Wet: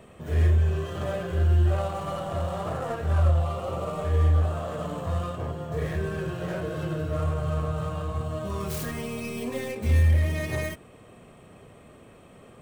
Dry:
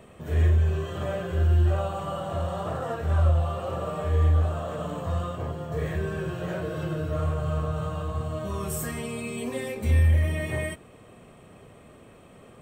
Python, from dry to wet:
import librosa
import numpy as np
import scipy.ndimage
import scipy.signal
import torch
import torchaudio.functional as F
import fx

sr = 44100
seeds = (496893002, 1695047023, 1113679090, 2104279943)

y = fx.tracing_dist(x, sr, depth_ms=0.36)
y = fx.notch(y, sr, hz=1700.0, q=5.4, at=(3.43, 4.05))